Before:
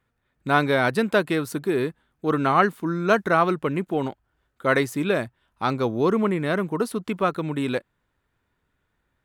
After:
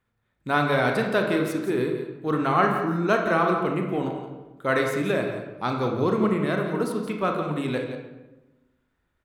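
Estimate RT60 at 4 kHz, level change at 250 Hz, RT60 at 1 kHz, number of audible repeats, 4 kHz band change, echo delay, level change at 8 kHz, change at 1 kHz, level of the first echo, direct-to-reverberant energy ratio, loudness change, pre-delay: 0.70 s, -1.0 dB, 1.0 s, 1, -2.0 dB, 0.172 s, -3.0 dB, -1.5 dB, -10.5 dB, 2.0 dB, -1.0 dB, 24 ms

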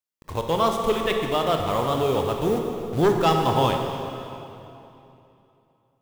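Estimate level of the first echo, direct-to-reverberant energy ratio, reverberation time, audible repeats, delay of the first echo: none, 2.5 dB, 2.9 s, none, none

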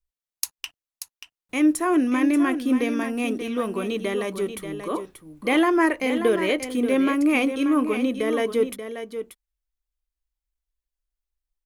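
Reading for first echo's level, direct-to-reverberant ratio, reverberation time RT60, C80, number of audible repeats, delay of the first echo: -9.5 dB, none, none, none, 1, 0.584 s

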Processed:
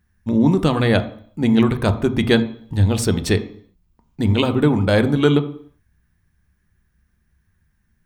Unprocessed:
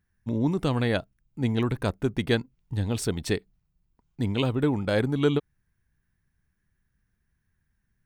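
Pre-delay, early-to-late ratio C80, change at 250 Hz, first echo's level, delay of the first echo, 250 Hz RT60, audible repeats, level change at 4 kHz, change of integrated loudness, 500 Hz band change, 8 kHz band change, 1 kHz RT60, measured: 3 ms, 16.5 dB, +10.0 dB, none, none, 0.60 s, none, +8.5 dB, +9.0 dB, +8.0 dB, +8.0 dB, 0.55 s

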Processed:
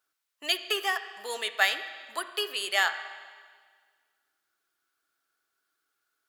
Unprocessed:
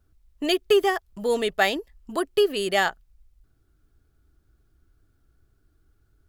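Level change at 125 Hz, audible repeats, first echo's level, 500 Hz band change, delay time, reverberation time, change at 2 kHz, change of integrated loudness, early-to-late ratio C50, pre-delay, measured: under -30 dB, none, none, -15.0 dB, none, 1.7 s, 0.0 dB, -5.0 dB, 11.0 dB, 11 ms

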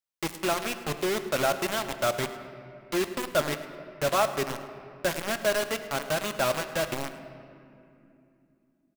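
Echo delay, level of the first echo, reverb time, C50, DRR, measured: 0.106 s, -17.5 dB, 2.8 s, 10.0 dB, 8.5 dB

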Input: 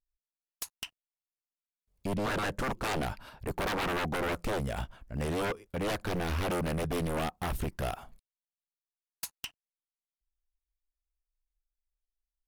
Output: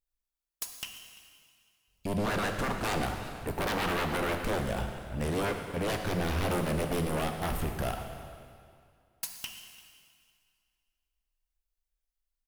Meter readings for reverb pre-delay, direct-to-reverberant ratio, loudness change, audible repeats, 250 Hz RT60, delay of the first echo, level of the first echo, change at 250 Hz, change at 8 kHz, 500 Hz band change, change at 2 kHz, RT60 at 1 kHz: 7 ms, 4.5 dB, +1.5 dB, 1, 2.2 s, 0.342 s, -20.0 dB, +2.0 dB, +2.5 dB, +1.5 dB, +1.5 dB, 2.2 s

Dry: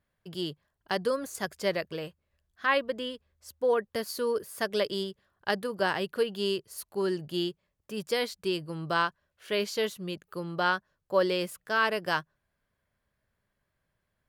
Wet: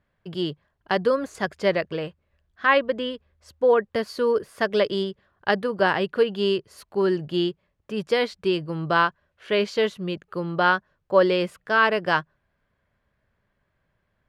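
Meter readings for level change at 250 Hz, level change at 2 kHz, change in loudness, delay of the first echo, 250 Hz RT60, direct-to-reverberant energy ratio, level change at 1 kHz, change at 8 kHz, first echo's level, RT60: +7.5 dB, +7.0 dB, +7.0 dB, none, none, none, +7.0 dB, n/a, none, none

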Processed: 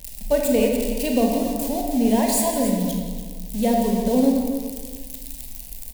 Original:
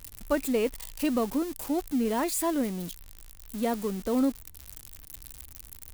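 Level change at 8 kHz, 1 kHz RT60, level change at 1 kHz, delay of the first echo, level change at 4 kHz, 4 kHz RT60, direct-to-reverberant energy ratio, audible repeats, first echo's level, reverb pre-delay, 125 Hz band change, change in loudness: +9.0 dB, 1.5 s, +7.5 dB, 0.172 s, +8.5 dB, 0.95 s, 0.0 dB, 2, -11.5 dB, 28 ms, +11.0 dB, +8.0 dB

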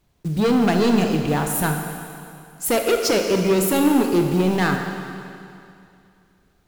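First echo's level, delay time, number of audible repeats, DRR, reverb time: none, none, none, 3.5 dB, 2.5 s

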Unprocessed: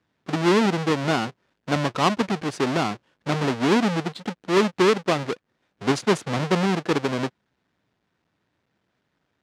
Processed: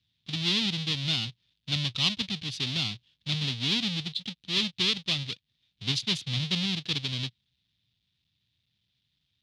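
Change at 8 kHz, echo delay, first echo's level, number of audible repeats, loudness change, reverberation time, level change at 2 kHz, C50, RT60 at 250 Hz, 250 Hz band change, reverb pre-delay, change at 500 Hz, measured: -4.0 dB, none, none, none, -5.0 dB, none, -7.0 dB, none, none, -11.5 dB, none, -22.5 dB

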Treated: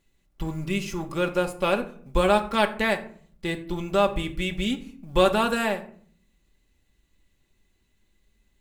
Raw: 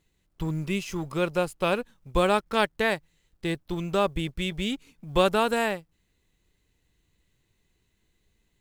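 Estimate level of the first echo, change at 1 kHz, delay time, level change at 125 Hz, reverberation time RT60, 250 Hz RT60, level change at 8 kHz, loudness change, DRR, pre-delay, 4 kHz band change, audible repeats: none, +2.0 dB, none, 0.0 dB, 0.55 s, 0.80 s, +1.0 dB, +2.0 dB, 3.5 dB, 3 ms, +1.0 dB, none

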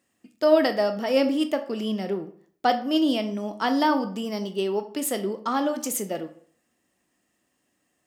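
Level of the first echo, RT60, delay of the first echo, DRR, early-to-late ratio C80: none, 0.55 s, none, 8.5 dB, 16.5 dB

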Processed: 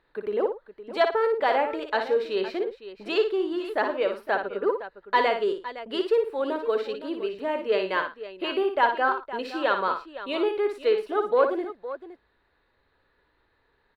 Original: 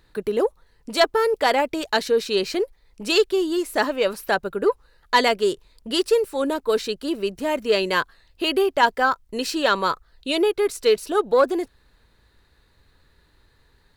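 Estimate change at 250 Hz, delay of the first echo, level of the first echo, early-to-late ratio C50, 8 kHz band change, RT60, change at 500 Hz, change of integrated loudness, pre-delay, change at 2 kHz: -6.0 dB, 58 ms, -7.0 dB, none, under -20 dB, none, -3.5 dB, -4.5 dB, none, -4.5 dB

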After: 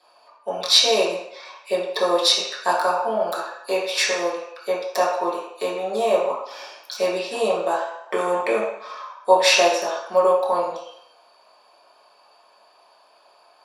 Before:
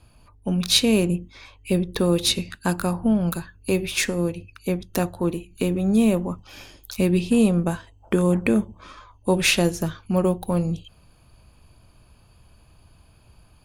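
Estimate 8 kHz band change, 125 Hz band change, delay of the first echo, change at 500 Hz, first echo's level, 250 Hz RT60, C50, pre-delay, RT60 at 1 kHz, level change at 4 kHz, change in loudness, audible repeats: +1.0 dB, under -20 dB, none, +5.0 dB, none, 0.55 s, 2.5 dB, 3 ms, 0.80 s, +5.0 dB, +1.5 dB, none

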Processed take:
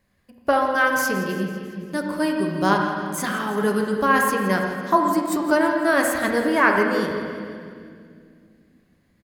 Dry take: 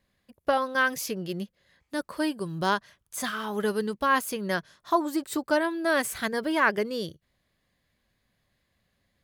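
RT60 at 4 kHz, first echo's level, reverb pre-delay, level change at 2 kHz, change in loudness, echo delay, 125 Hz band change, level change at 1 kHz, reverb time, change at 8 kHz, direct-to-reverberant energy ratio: 2.0 s, -14.0 dB, 10 ms, +6.5 dB, +6.5 dB, 0.167 s, +8.5 dB, +7.0 dB, 2.2 s, +4.5 dB, 1.0 dB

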